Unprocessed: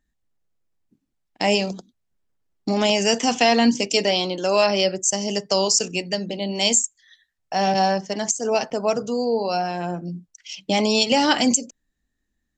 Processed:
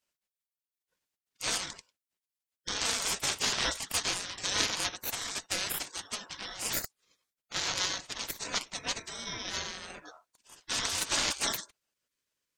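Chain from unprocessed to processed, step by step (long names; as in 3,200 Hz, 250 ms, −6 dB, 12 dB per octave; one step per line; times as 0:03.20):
harmonic generator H 2 −12 dB, 6 −31 dB, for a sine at −3.5 dBFS
gate on every frequency bin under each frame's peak −25 dB weak
ring modulation 1,000 Hz
level +6.5 dB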